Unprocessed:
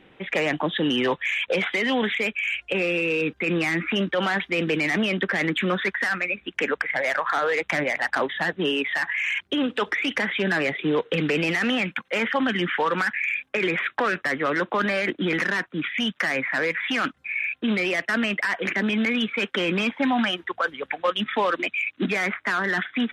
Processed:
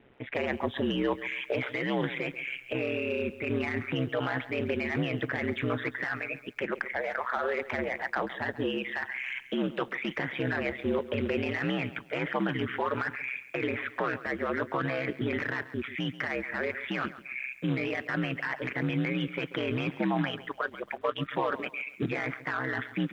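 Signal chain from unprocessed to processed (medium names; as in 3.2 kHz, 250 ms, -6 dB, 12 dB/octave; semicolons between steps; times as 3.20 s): ring modulator 65 Hz; tape spacing loss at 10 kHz 22 dB; bit-crushed delay 137 ms, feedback 35%, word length 9-bit, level -15 dB; trim -2 dB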